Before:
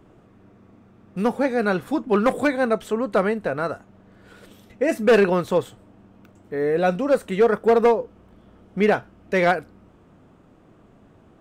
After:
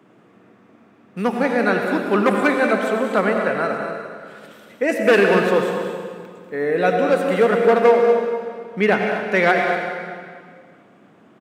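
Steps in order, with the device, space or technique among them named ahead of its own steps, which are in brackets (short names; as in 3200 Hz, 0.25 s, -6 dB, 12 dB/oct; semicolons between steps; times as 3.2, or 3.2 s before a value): stadium PA (HPF 150 Hz 24 dB/oct; bell 2000 Hz +5.5 dB 1.5 oct; loudspeakers at several distances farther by 66 m -11 dB, 82 m -10 dB; reverb RT60 1.9 s, pre-delay 71 ms, DRR 3.5 dB)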